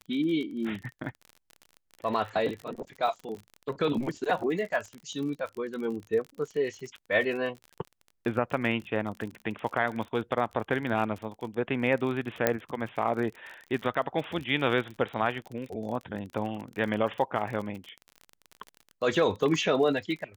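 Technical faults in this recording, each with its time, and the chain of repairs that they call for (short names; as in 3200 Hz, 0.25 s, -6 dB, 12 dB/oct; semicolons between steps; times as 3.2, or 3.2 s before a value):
crackle 39/s -35 dBFS
12.47 pop -8 dBFS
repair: de-click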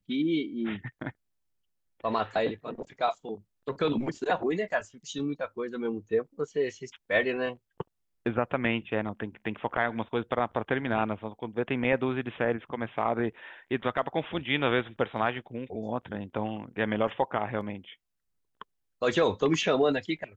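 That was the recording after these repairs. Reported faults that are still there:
none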